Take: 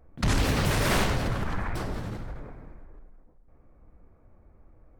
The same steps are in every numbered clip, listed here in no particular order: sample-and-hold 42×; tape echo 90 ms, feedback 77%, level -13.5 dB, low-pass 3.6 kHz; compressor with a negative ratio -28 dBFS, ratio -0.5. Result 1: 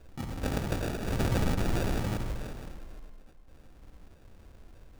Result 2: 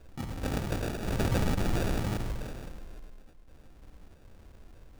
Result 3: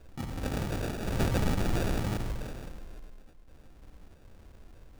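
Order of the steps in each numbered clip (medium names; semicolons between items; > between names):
sample-and-hold > compressor with a negative ratio > tape echo; tape echo > sample-and-hold > compressor with a negative ratio; compressor with a negative ratio > tape echo > sample-and-hold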